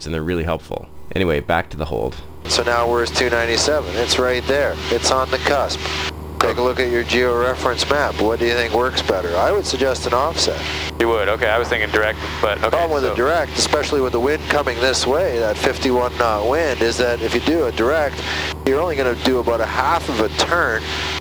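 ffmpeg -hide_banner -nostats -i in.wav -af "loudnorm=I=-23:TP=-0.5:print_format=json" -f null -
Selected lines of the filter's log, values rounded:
"input_i" : "-18.3",
"input_tp" : "-2.7",
"input_lra" : "1.0",
"input_thresh" : "-28.4",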